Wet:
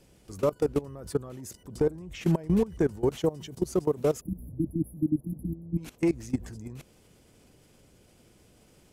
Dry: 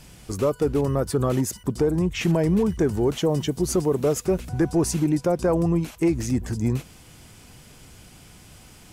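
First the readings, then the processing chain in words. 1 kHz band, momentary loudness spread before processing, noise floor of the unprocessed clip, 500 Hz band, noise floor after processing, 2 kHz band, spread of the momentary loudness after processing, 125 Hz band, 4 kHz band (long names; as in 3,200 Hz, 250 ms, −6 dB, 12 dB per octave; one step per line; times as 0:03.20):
−8.5 dB, 4 LU, −49 dBFS, −6.0 dB, −60 dBFS, −9.5 dB, 15 LU, −8.0 dB, −11.0 dB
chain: output level in coarse steps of 20 dB
time-frequency box erased 0:04.21–0:05.78, 340–10,000 Hz
noise in a band 47–530 Hz −61 dBFS
level −1.5 dB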